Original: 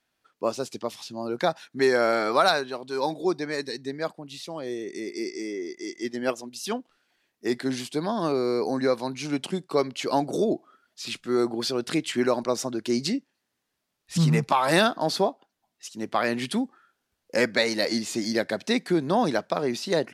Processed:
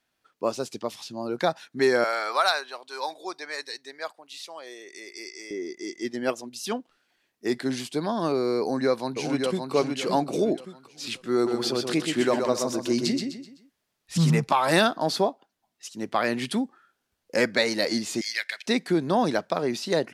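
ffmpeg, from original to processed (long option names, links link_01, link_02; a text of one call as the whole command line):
ffmpeg -i in.wav -filter_complex "[0:a]asettb=1/sr,asplit=3[link_01][link_02][link_03];[link_01]atrim=end=2.044[link_04];[link_02]atrim=start=2.04:end=5.51,asetpts=PTS-STARTPTS,afade=type=in:duration=0.004:curve=qsin,afade=type=out:start_time=3.466:duration=0.004:curve=qsin,highpass=780[link_05];[link_03]atrim=start=5.506[link_06];[link_04][link_05]acrossfade=duration=0.004:curve1=hsin:curve2=qsin[link_07];[link_07][link_06]acrossfade=duration=0.004:curve1=qsin:curve2=hsin,asplit=2[link_08][link_09];[link_09]afade=type=in:start_time=8.59:duration=0.01,afade=type=out:start_time=9.73:duration=0.01,aecho=0:1:570|1140|1710|2280:0.595662|0.208482|0.0729686|0.025539[link_10];[link_08][link_10]amix=inputs=2:normalize=0,asplit=3[link_11][link_12][link_13];[link_11]afade=type=out:start_time=11.46:duration=0.02[link_14];[link_12]aecho=1:1:127|254|381|508:0.562|0.202|0.0729|0.0262,afade=type=in:start_time=11.46:duration=0.02,afade=type=out:start_time=14.3:duration=0.02[link_15];[link_13]afade=type=in:start_time=14.3:duration=0.02[link_16];[link_14][link_15][link_16]amix=inputs=3:normalize=0,asettb=1/sr,asplit=3[link_17][link_18][link_19];[link_17]atrim=end=18.214[link_20];[link_18]atrim=start=18.21:end=18.66,asetpts=PTS-STARTPTS,afade=type=in:duration=0.004:curve=qsin,afade=type=out:start_time=0.446:duration=0.004:curve=qsin,highpass=frequency=2200:width_type=q:width=2.4[link_21];[link_19]atrim=start=18.656[link_22];[link_20][link_21]acrossfade=duration=0.004:curve1=hsin:curve2=qsin[link_23];[link_23][link_22]acrossfade=duration=0.004:curve1=qsin:curve2=hsin" out.wav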